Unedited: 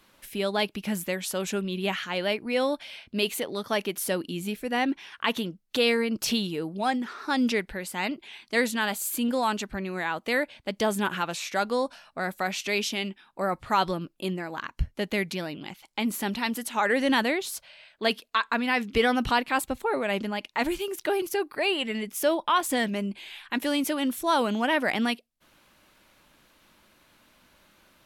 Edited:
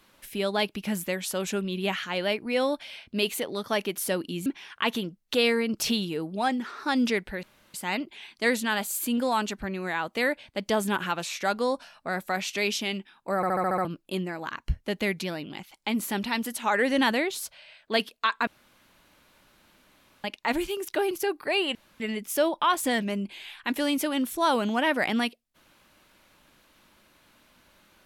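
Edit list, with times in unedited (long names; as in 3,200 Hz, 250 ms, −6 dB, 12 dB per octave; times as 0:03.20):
0:04.46–0:04.88: remove
0:07.85: splice in room tone 0.31 s
0:13.47: stutter in place 0.07 s, 7 plays
0:18.58–0:20.35: fill with room tone
0:21.86: splice in room tone 0.25 s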